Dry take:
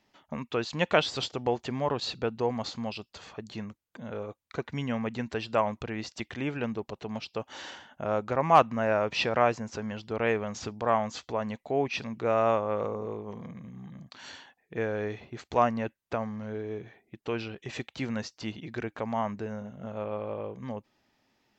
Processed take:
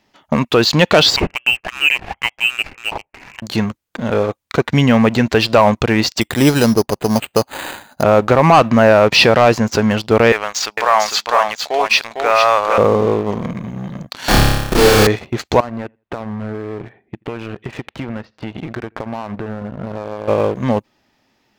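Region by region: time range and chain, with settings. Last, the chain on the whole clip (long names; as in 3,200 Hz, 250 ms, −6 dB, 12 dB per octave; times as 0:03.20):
0:01.16–0:03.42: high-pass filter 780 Hz 24 dB per octave + high-frequency loss of the air 84 metres + voice inversion scrambler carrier 3,500 Hz
0:06.21–0:08.03: low-pass filter 2,300 Hz + bad sample-rate conversion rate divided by 8×, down none, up hold
0:10.32–0:12.78: high-pass filter 950 Hz + single-tap delay 452 ms −4.5 dB
0:14.28–0:15.07: parametric band 1,100 Hz +2 dB 0.74 octaves + comparator with hysteresis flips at −41.5 dBFS + flutter between parallel walls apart 5 metres, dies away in 1.2 s
0:15.60–0:20.28: downward compressor 8 to 1, threshold −39 dBFS + high-frequency loss of the air 430 metres + repeating echo 83 ms, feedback 25%, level −22 dB
whole clip: dynamic equaliser 4,500 Hz, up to +5 dB, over −55 dBFS, Q 3.6; leveller curve on the samples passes 2; boost into a limiter +14 dB; level −1 dB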